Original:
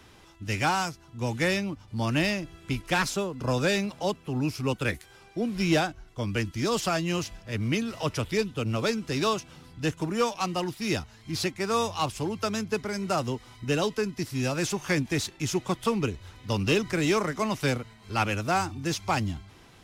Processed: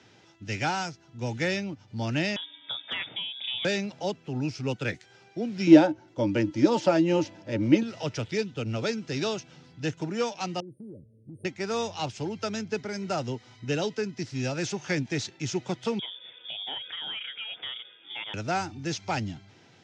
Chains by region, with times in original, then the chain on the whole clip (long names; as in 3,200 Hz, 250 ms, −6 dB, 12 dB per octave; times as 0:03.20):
0:02.36–0:03.65: voice inversion scrambler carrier 3,600 Hz + downward compressor 2 to 1, threshold −29 dBFS + hard clipping −19 dBFS
0:05.67–0:07.83: dynamic equaliser 7,100 Hz, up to −5 dB, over −45 dBFS, Q 0.72 + hollow resonant body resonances 310/550/890 Hz, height 18 dB, ringing for 70 ms
0:10.60–0:11.45: linear-phase brick-wall band-stop 610–8,600 Hz + downward compressor 12 to 1, threshold −37 dBFS
0:15.99–0:18.34: voice inversion scrambler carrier 3,500 Hz + downward compressor 2.5 to 1, threshold −34 dBFS
whole clip: elliptic band-pass filter 110–6,400 Hz, stop band 40 dB; parametric band 1,100 Hz −14 dB 0.21 octaves; level −1.5 dB